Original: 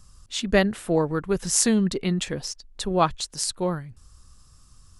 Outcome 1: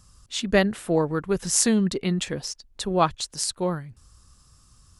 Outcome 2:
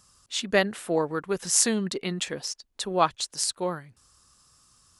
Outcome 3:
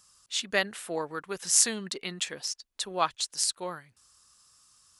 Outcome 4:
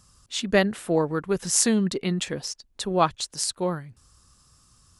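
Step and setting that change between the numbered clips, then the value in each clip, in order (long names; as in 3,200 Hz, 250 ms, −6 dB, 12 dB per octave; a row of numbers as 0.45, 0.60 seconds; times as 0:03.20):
high-pass filter, corner frequency: 42, 420, 1,500, 130 Hertz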